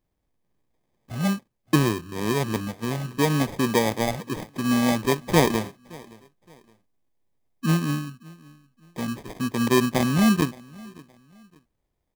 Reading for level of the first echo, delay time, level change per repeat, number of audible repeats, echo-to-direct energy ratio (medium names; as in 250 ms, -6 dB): -23.5 dB, 569 ms, -10.0 dB, 2, -23.0 dB